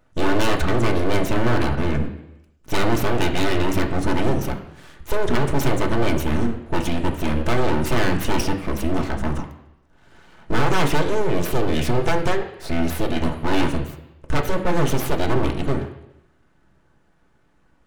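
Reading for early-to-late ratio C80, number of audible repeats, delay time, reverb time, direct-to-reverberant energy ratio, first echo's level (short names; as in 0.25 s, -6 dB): 11.5 dB, none, none, 0.85 s, 2.5 dB, none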